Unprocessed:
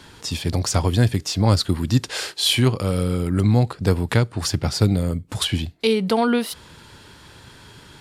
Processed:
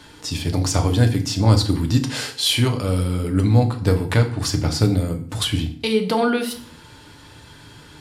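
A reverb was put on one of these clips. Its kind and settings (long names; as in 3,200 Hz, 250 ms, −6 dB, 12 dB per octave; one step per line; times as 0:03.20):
feedback delay network reverb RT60 0.51 s, low-frequency decay 1.4×, high-frequency decay 0.85×, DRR 4 dB
level −1 dB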